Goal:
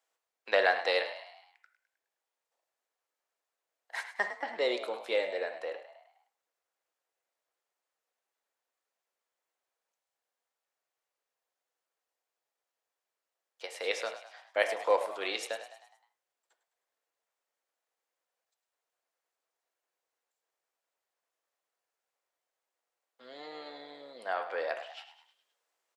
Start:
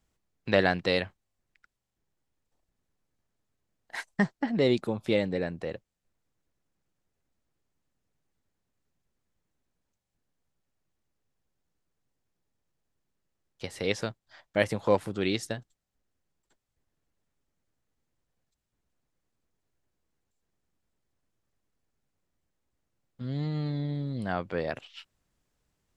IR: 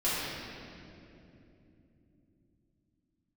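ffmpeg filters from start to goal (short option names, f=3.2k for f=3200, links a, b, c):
-filter_complex "[0:a]highpass=f=510:w=0.5412,highpass=f=510:w=1.3066,asplit=6[a][b][c][d][e][f];[b]adelay=104,afreqshift=54,volume=-12dB[g];[c]adelay=208,afreqshift=108,volume=-18dB[h];[d]adelay=312,afreqshift=162,volume=-24dB[i];[e]adelay=416,afreqshift=216,volume=-30.1dB[j];[f]adelay=520,afreqshift=270,volume=-36.1dB[k];[a][g][h][i][j][k]amix=inputs=6:normalize=0,asplit=2[l][m];[1:a]atrim=start_sample=2205,atrim=end_sample=3969,lowpass=3.1k[n];[m][n]afir=irnorm=-1:irlink=0,volume=-12.5dB[o];[l][o]amix=inputs=2:normalize=0,volume=-2dB"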